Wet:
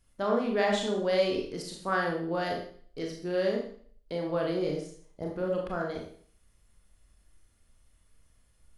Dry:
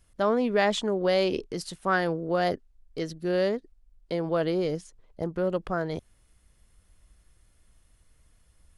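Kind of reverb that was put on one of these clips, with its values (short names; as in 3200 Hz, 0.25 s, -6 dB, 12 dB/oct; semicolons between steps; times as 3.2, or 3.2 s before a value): Schroeder reverb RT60 0.52 s, combs from 27 ms, DRR -0.5 dB; gain -6 dB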